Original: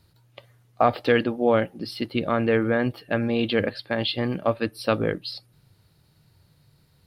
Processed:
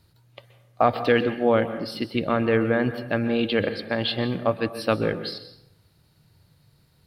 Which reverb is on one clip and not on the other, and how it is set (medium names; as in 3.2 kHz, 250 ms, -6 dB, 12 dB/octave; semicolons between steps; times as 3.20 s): plate-style reverb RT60 0.79 s, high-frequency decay 0.65×, pre-delay 115 ms, DRR 11 dB